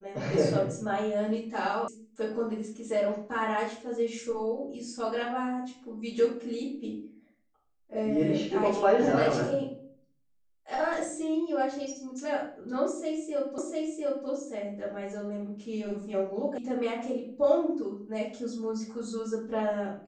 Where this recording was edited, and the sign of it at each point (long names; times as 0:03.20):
0:01.88: cut off before it has died away
0:13.58: the same again, the last 0.7 s
0:16.58: cut off before it has died away